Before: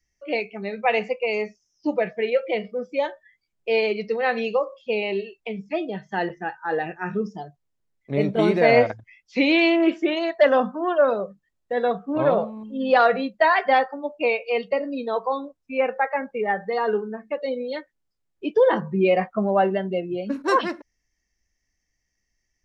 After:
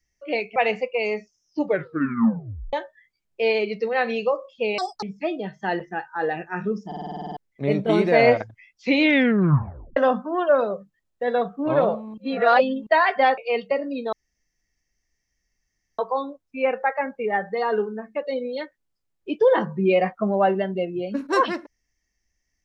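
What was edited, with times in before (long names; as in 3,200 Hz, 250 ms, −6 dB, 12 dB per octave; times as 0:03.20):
0:00.56–0:00.84: remove
0:01.91: tape stop 1.10 s
0:05.06–0:05.52: play speed 187%
0:07.36: stutter in place 0.05 s, 10 plays
0:09.49: tape stop 0.97 s
0:12.67–0:13.36: reverse
0:13.87–0:14.39: remove
0:15.14: splice in room tone 1.86 s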